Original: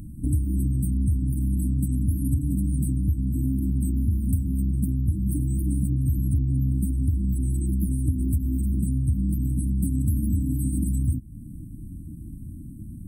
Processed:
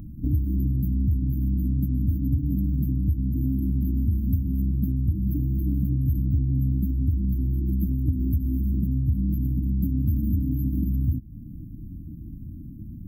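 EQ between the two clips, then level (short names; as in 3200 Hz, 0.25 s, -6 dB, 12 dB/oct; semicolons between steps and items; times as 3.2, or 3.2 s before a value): brick-wall FIR band-stop 1200–12000 Hz; 0.0 dB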